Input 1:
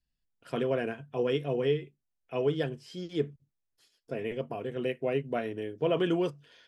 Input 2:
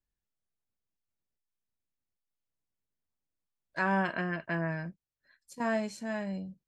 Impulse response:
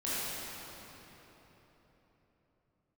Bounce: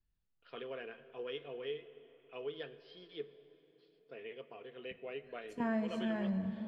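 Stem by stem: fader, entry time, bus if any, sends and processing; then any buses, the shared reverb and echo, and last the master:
-14.5 dB, 0.00 s, send -20.5 dB, steep low-pass 4300 Hz 48 dB/oct; tilt +4 dB/oct; small resonant body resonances 440/1200 Hz, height 7 dB, ringing for 25 ms
-3.0 dB, 0.00 s, muted 3.18–4.91, send -15.5 dB, tone controls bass +10 dB, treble -14 dB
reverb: on, RT60 4.0 s, pre-delay 17 ms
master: compressor 2:1, threshold -35 dBFS, peak gain reduction 6 dB

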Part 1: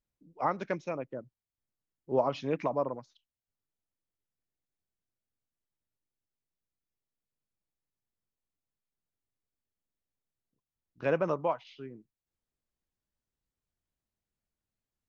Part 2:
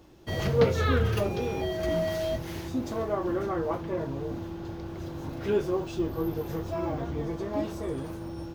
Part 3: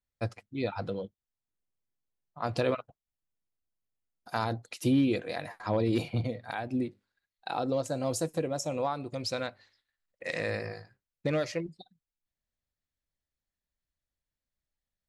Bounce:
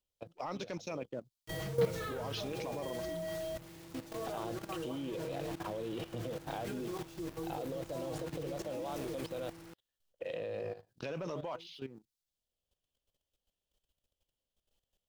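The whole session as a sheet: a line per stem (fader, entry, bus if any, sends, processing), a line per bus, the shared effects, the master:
-1.0 dB, 0.00 s, bus A, no send, resonant high shelf 2600 Hz +12 dB, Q 1.5
-8.5 dB, 1.20 s, no bus, no send, comb 6.3 ms, depth 76%; de-hum 210.5 Hz, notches 39; bit-crush 6-bit
-9.5 dB, 0.00 s, bus A, no send, EQ curve 250 Hz 0 dB, 490 Hz +9 dB, 2100 Hz -9 dB, 3100 Hz +12 dB, 4500 Hz -10 dB; three-band squash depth 70%; auto duck -13 dB, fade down 0.30 s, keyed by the first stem
bus A: 0.0 dB, sample leveller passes 1; limiter -24 dBFS, peak gain reduction 7 dB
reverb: off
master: level quantiser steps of 13 dB

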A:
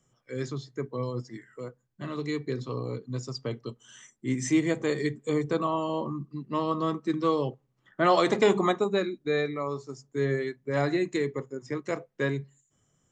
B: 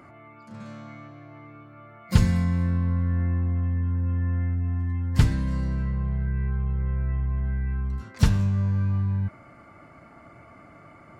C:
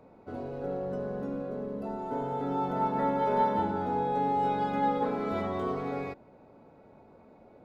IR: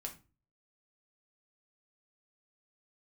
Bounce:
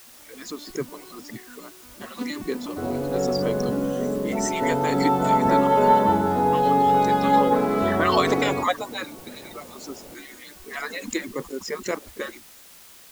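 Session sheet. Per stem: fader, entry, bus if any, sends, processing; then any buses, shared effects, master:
-3.0 dB, 0.00 s, no send, median-filter separation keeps percussive; backwards sustainer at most 120 dB/s
-17.0 dB, 0.05 s, no send, arpeggiated vocoder minor triad, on B3, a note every 0.118 s
+1.5 dB, 2.50 s, no send, dry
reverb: off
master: AGC gain up to 8 dB; requantised 8-bit, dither triangular

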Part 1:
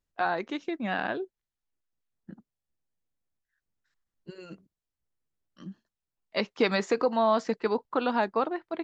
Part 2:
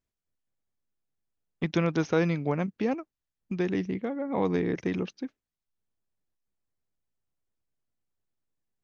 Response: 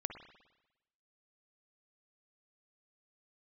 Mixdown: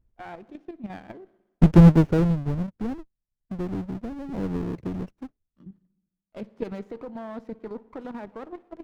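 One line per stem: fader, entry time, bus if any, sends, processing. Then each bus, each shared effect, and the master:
-11.0 dB, 0.00 s, send -9 dB, level quantiser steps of 10 dB
1.87 s 0 dB -> 2.46 s -13 dB, 0.00 s, no send, half-waves squared off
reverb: on, RT60 1.0 s, pre-delay 50 ms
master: tilt -4 dB/oct; running maximum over 9 samples

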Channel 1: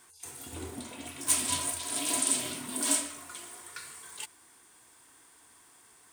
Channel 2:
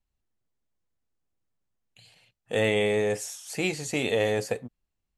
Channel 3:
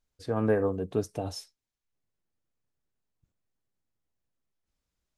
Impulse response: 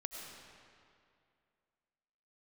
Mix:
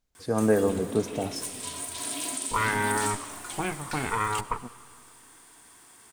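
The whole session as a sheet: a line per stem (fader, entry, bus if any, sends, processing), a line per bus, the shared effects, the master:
+3.0 dB, 0.15 s, send -8 dB, compressor 6:1, threshold -35 dBFS, peak gain reduction 13.5 dB; auto duck -7 dB, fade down 1.70 s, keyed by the third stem
-2.5 dB, 0.00 s, send -13.5 dB, minimum comb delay 0.89 ms; envelope low-pass 590–1600 Hz up, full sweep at -26 dBFS
+0.5 dB, 0.00 s, send -6.5 dB, bell 82 Hz -7.5 dB 0.77 oct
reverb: on, RT60 2.4 s, pre-delay 60 ms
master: bell 200 Hz +2.5 dB

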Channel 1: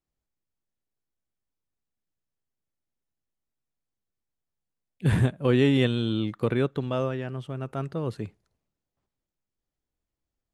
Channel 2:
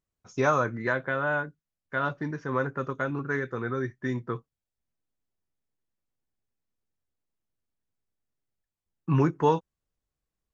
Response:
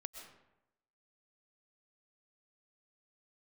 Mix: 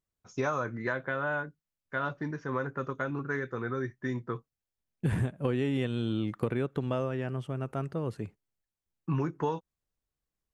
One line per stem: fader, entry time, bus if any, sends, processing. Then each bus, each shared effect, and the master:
+1.5 dB, 0.00 s, no send, bell 3800 Hz -6.5 dB 0.55 oct; gate -42 dBFS, range -38 dB; auto duck -8 dB, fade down 2.00 s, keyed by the second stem
-2.5 dB, 0.00 s, no send, dry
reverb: off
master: compressor 6:1, threshold -26 dBFS, peak gain reduction 11 dB

